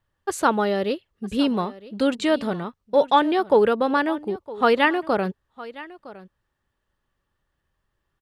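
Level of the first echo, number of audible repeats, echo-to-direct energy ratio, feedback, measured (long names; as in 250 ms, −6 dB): −18.5 dB, 1, −18.5 dB, repeats not evenly spaced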